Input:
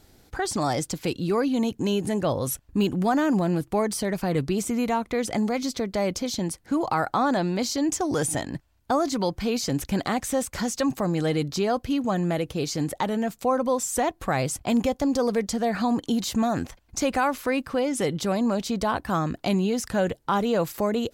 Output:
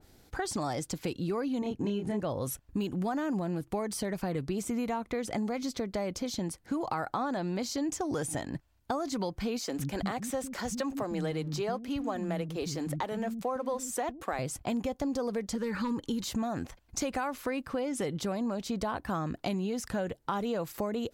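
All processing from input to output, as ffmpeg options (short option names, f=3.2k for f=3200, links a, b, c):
-filter_complex "[0:a]asettb=1/sr,asplit=3[a][b][c];[a]atrim=end=1.594[d];[b]atrim=start=1.59:end=2.2,asetpts=PTS-STARTPTS,afade=t=in:d=0.004:c=qsin,afade=t=out:st=0.606:d=0.004:c=qsin,lowpass=f=2.8k:p=1,asplit=2[e][f];[f]adelay=29,volume=-3dB[g];[e][g]amix=inputs=2:normalize=0,atrim=end_sample=26901[h];[c]atrim=start=2.196[i];[d][h]acrossfade=d=0.004:c1=hsin:c2=qsin[j];[j][i]acrossfade=d=0.004:c1=qsin:c2=hsin,asettb=1/sr,asplit=3[k][l][m];[k]atrim=end=9.594[n];[l]atrim=start=9.59:end=14.39,asetpts=PTS-STARTPTS,afade=t=in:d=0.004:c=qsin,afade=t=out:st=4.796:d=0.004:c=qsin,aeval=exprs='sgn(val(0))*max(abs(val(0))-0.00299,0)':c=same,acrossover=split=240[o][p];[o]adelay=110[q];[q][p]amix=inputs=2:normalize=0,atrim=end_sample=211680[r];[m]atrim=start=14.386[s];[n][r]acrossfade=d=0.004:c1=hsin:c2=qsin[t];[t][s]acrossfade=d=0.004:c1=qsin:c2=hsin,asettb=1/sr,asplit=3[u][v][w];[u]atrim=end=15.554[x];[v]atrim=start=15.55:end=16.24,asetpts=PTS-STARTPTS,afade=t=in:d=0.004:c=qsin,afade=t=out:st=0.686:d=0.004:c=qsin,asubboost=boost=9.5:cutoff=110,asoftclip=type=hard:threshold=-17.5dB,asuperstop=centerf=700:order=12:qfactor=3.7[y];[w]atrim=start=16.236[z];[x][y]acrossfade=d=0.004:c1=hsin:c2=qsin[aa];[aa][z]acrossfade=d=0.004:c1=qsin:c2=hsin,acompressor=threshold=-25dB:ratio=6,adynamicequalizer=threshold=0.00447:dfrequency=2400:dqfactor=0.7:tfrequency=2400:tqfactor=0.7:attack=5:release=100:ratio=0.375:range=1.5:mode=cutabove:tftype=highshelf,volume=-3.5dB"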